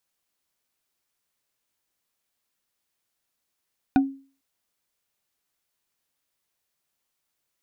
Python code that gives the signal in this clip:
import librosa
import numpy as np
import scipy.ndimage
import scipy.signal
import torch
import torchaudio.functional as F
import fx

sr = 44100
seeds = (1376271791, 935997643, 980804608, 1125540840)

y = fx.strike_wood(sr, length_s=0.45, level_db=-12, body='bar', hz=272.0, decay_s=0.39, tilt_db=6.0, modes=5)